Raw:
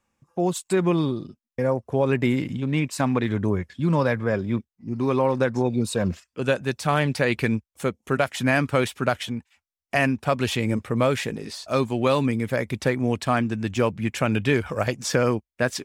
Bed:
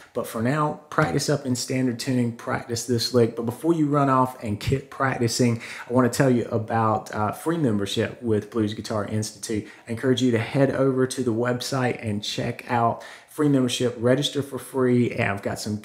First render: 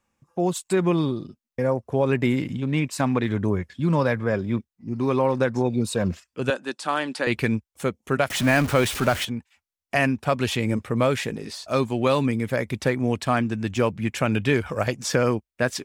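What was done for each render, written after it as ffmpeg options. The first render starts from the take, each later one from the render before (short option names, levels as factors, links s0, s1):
-filter_complex "[0:a]asettb=1/sr,asplit=3[s0][s1][s2];[s0]atrim=end=6.504[s3];[s1]atrim=start=6.5:end=7.27,asetpts=PTS-STARTPTS,afade=t=in:d=0.004:c=qsin,afade=t=out:st=0.766:d=0.004:c=qsin,highpass=f=260:w=0.5412,highpass=f=260:w=1.3066,equalizer=f=440:t=q:w=4:g=-7,equalizer=f=660:t=q:w=4:g=-5,equalizer=f=2200:t=q:w=4:g=-7,equalizer=f=6000:t=q:w=4:g=-5,lowpass=f=9800:w=0.5412,lowpass=f=9800:w=1.3066[s4];[s2]atrim=start=7.266[s5];[s3][s4]acrossfade=d=0.004:c1=hsin:c2=qsin[s6];[s6][s5]acrossfade=d=0.004:c1=qsin:c2=hsin,asettb=1/sr,asplit=3[s7][s8][s9];[s7]atrim=end=8.304[s10];[s8]atrim=start=8.3:end=9.25,asetpts=PTS-STARTPTS,afade=t=in:d=0.004:c=qsin,afade=t=out:st=0.946:d=0.004:c=qsin,aeval=exprs='val(0)+0.5*0.0501*sgn(val(0))':c=same[s11];[s9]atrim=start=9.246[s12];[s10][s11]acrossfade=d=0.004:c1=hsin:c2=qsin[s13];[s13][s12]acrossfade=d=0.004:c1=qsin:c2=hsin"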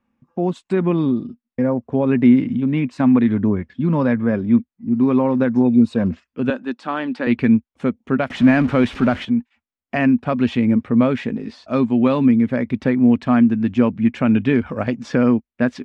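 -af "lowpass=2800,equalizer=f=240:w=2.8:g=13.5"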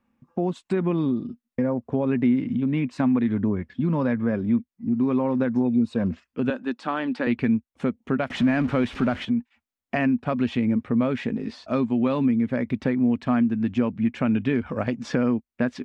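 -af "acompressor=threshold=0.0631:ratio=2"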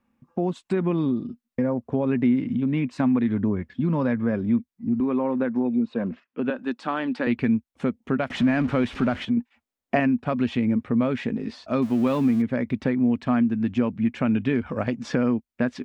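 -filter_complex "[0:a]asettb=1/sr,asplit=3[s0][s1][s2];[s0]atrim=end=5.004[s3];[s1]atrim=start=5:end=6.59,asetpts=PTS-STARTPTS,afade=t=in:d=0.004:c=qsin,afade=t=out:st=1.586:d=0.004:c=qsin,highpass=210,lowpass=3100[s4];[s2]atrim=start=6.586[s5];[s3][s4]acrossfade=d=0.004:c1=hsin:c2=qsin[s6];[s6][s5]acrossfade=d=0.004:c1=qsin:c2=hsin,asettb=1/sr,asplit=3[s7][s8][s9];[s7]atrim=end=9.374[s10];[s8]atrim=start=9.37:end=10,asetpts=PTS-STARTPTS,afade=t=in:d=0.004:c=qsin,afade=t=out:st=0.626:d=0.004:c=qsin,equalizer=f=460:w=0.64:g=6.5[s11];[s9]atrim=start=9.996[s12];[s10][s11]acrossfade=d=0.004:c1=hsin:c2=qsin[s13];[s13][s12]acrossfade=d=0.004:c1=qsin:c2=hsin,asettb=1/sr,asplit=3[s14][s15][s16];[s14]atrim=end=11.824[s17];[s15]atrim=start=11.82:end=12.42,asetpts=PTS-STARTPTS,afade=t=in:d=0.004:c=qsin,afade=t=out:st=0.596:d=0.004:c=qsin,aeval=exprs='val(0)+0.5*0.015*sgn(val(0))':c=same[s18];[s16]atrim=start=12.416[s19];[s17][s18]acrossfade=d=0.004:c1=hsin:c2=qsin[s20];[s20][s19]acrossfade=d=0.004:c1=qsin:c2=hsin"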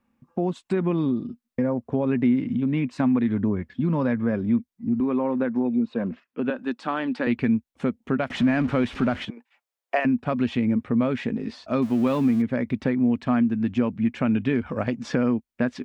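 -filter_complex "[0:a]asettb=1/sr,asplit=3[s0][s1][s2];[s0]atrim=end=9.304[s3];[s1]atrim=start=9.3:end=10.05,asetpts=PTS-STARTPTS,afade=t=in:d=0.004:c=qsin,afade=t=out:st=0.746:d=0.004:c=qsin,highpass=f=460:w=0.5412,highpass=f=460:w=1.3066[s4];[s2]atrim=start=10.046[s5];[s3][s4]acrossfade=d=0.004:c1=hsin:c2=qsin[s6];[s6][s5]acrossfade=d=0.004:c1=qsin:c2=hsin"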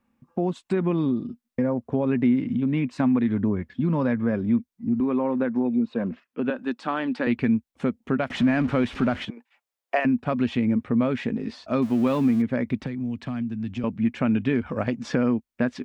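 -filter_complex "[0:a]asettb=1/sr,asplit=3[s0][s1][s2];[s0]atrim=end=12.834[s3];[s1]atrim=start=12.83:end=13.84,asetpts=PTS-STARTPTS,afade=t=in:d=0.004:c=qsin,afade=t=out:st=1.006:d=0.004:c=qsin,acrossover=split=170|3000[s4][s5][s6];[s5]acompressor=threshold=0.02:ratio=5:attack=3.2:release=140:knee=2.83:detection=peak[s7];[s4][s7][s6]amix=inputs=3:normalize=0[s8];[s2]atrim=start=13.836[s9];[s3][s8]acrossfade=d=0.004:c1=hsin:c2=qsin[s10];[s10][s9]acrossfade=d=0.004:c1=qsin:c2=hsin"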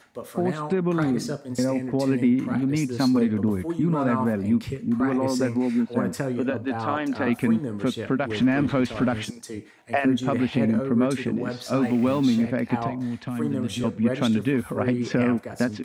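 -filter_complex "[1:a]volume=0.376[s0];[0:a][s0]amix=inputs=2:normalize=0"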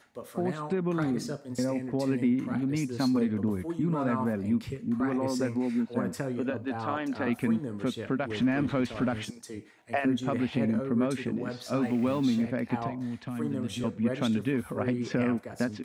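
-af "volume=0.531"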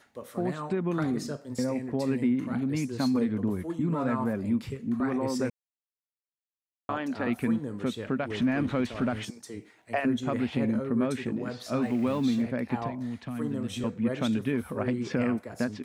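-filter_complex "[0:a]asplit=3[s0][s1][s2];[s0]atrim=end=5.5,asetpts=PTS-STARTPTS,afade=t=out:st=5.496:d=0.004:c=hsin[s3];[s1]atrim=start=5.5:end=6.89,asetpts=PTS-STARTPTS,volume=0[s4];[s2]atrim=start=6.89,asetpts=PTS-STARTPTS,afade=t=in:d=0.004:c=hsin[s5];[s3][s4][s5]concat=n=3:v=0:a=1"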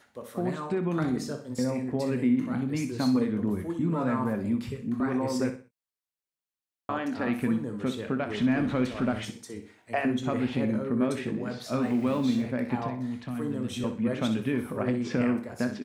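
-filter_complex "[0:a]asplit=2[s0][s1];[s1]adelay=24,volume=0.251[s2];[s0][s2]amix=inputs=2:normalize=0,aecho=1:1:62|124|186:0.299|0.0955|0.0306"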